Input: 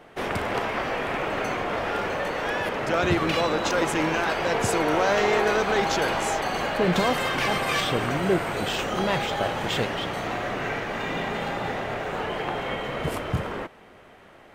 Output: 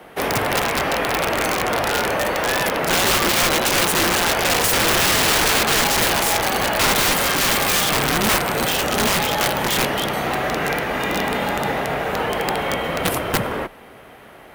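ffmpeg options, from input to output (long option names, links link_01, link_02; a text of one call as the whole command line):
ffmpeg -i in.wav -af "aexciter=amount=2.9:drive=7.5:freq=9700,afreqshift=26,aeval=exprs='(mod(8.91*val(0)+1,2)-1)/8.91':channel_layout=same,volume=7dB" out.wav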